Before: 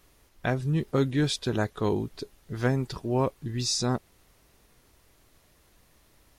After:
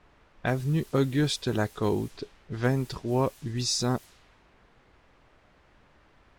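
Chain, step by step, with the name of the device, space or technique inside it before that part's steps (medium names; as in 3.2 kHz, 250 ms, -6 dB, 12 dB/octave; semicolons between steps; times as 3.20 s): cassette deck with a dynamic noise filter (white noise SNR 23 dB; level-controlled noise filter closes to 1.5 kHz, open at -25 dBFS)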